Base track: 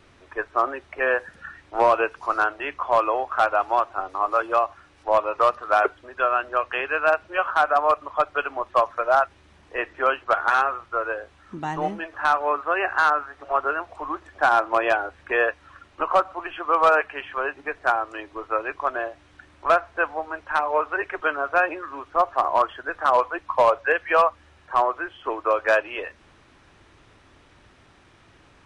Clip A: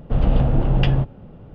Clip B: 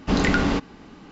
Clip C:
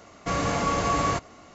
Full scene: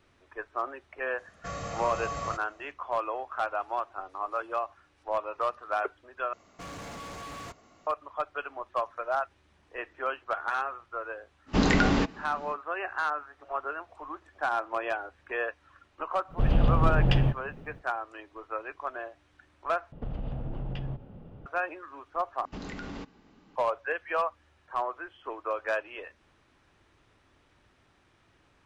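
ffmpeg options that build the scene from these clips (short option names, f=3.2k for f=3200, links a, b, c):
-filter_complex "[3:a]asplit=2[a][b];[2:a]asplit=2[c][d];[1:a]asplit=2[e][f];[0:a]volume=-10.5dB[g];[a]aecho=1:1:1.6:0.55[h];[b]volume=30dB,asoftclip=hard,volume=-30dB[i];[e]aemphasis=mode=production:type=50kf[j];[f]acompressor=threshold=-25dB:ratio=6:attack=3.2:release=140:knee=1:detection=peak[k];[d]acompressor=threshold=-21dB:ratio=6:attack=3.2:release=140:knee=1:detection=peak[l];[g]asplit=4[m][n][o][p];[m]atrim=end=6.334[q];[i]atrim=end=1.54,asetpts=PTS-STARTPTS,volume=-10dB[r];[n]atrim=start=7.866:end=19.924[s];[k]atrim=end=1.54,asetpts=PTS-STARTPTS,volume=-6dB[t];[o]atrim=start=21.456:end=22.454[u];[l]atrim=end=1.11,asetpts=PTS-STARTPTS,volume=-14dB[v];[p]atrim=start=23.556[w];[h]atrim=end=1.54,asetpts=PTS-STARTPTS,volume=-12.5dB,afade=t=in:d=0.004:c=hsin,afade=t=out:st=1.536:d=0.004:c=hsin,adelay=1180[x];[c]atrim=end=1.11,asetpts=PTS-STARTPTS,volume=-2.5dB,afade=t=in:d=0.05,afade=t=out:st=1.06:d=0.05,adelay=505386S[y];[j]atrim=end=1.54,asetpts=PTS-STARTPTS,volume=-5.5dB,afade=t=in:d=0.05,afade=t=out:st=1.49:d=0.05,adelay=16280[z];[q][r]acrossfade=d=0.004:c1=hsin:c2=hsin[aa];[aa][s]acrossfade=d=0.004:c1=hsin:c2=hsin[ab];[ab][t]acrossfade=d=0.004:c1=hsin:c2=hsin[ac];[ac][u]acrossfade=d=0.004:c1=hsin:c2=hsin[ad];[ad][v]acrossfade=d=0.004:c1=hsin:c2=hsin[ae];[ae][w]acrossfade=d=0.004:c1=hsin:c2=hsin[af];[af][x][y][z]amix=inputs=4:normalize=0"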